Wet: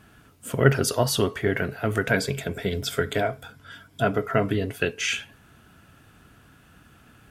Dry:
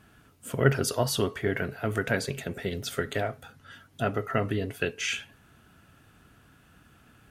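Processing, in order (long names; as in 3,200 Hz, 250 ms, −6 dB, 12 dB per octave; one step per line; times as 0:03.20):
0:02.10–0:04.55: EQ curve with evenly spaced ripples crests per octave 1.7, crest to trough 7 dB
level +4 dB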